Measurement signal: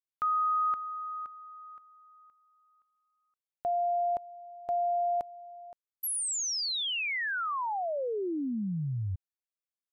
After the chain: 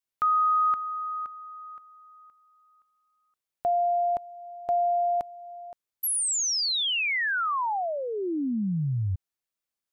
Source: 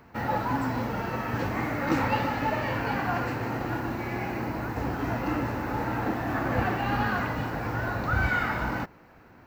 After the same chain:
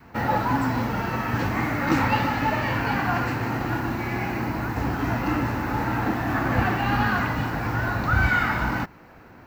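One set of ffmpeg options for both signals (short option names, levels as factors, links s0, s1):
-af "adynamicequalizer=threshold=0.00447:dfrequency=510:dqfactor=1.6:tfrequency=510:tqfactor=1.6:attack=5:release=100:ratio=0.375:range=3:mode=cutabove:tftype=bell,acontrast=36"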